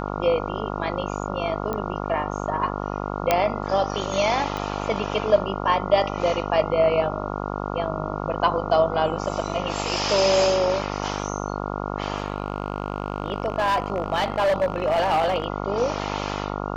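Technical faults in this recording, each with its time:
buzz 50 Hz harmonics 28 -29 dBFS
1.73 pop -15 dBFS
3.31 pop -4 dBFS
4.57 pop -16 dBFS
12.16–15.46 clipped -17 dBFS

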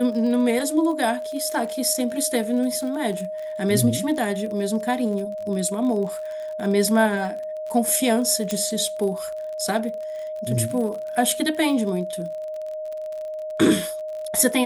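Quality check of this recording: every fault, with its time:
crackle 40/s -31 dBFS
tone 620 Hz -28 dBFS
8.51 pop -10 dBFS

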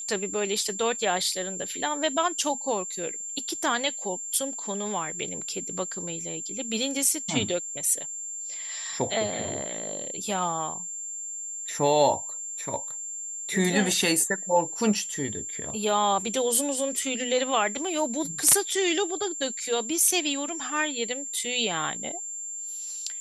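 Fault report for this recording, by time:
tone 7300 Hz -33 dBFS

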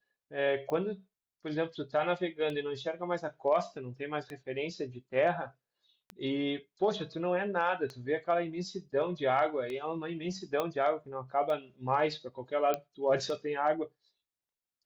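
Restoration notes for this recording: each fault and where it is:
tick 33 1/3 rpm -26 dBFS
10.6 pop -18 dBFS
12.74 pop -17 dBFS

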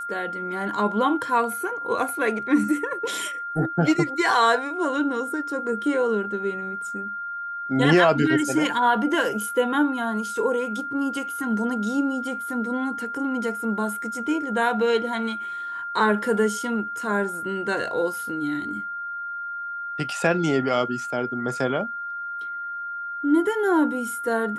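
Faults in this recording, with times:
tone 1400 Hz -29 dBFS

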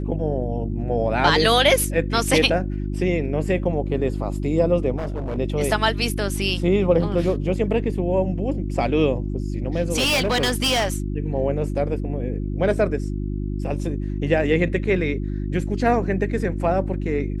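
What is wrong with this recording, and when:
hum 50 Hz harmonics 7 -26 dBFS
4.96–5.38 clipped -23 dBFS
9.96–10.96 clipped -16.5 dBFS

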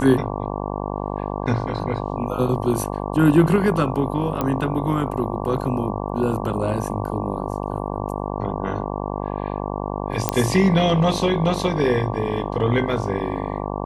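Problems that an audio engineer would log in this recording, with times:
buzz 50 Hz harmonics 23 -27 dBFS
4.41 pop -10 dBFS
10.29 pop -2 dBFS

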